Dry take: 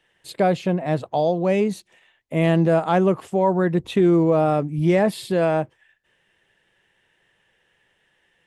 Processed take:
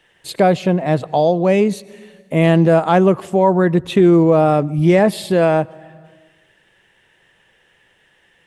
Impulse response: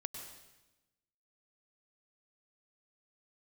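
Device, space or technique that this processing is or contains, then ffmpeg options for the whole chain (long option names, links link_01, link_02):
compressed reverb return: -filter_complex "[0:a]asplit=2[link_01][link_02];[1:a]atrim=start_sample=2205[link_03];[link_02][link_03]afir=irnorm=-1:irlink=0,acompressor=threshold=-36dB:ratio=5,volume=-4dB[link_04];[link_01][link_04]amix=inputs=2:normalize=0,volume=5dB"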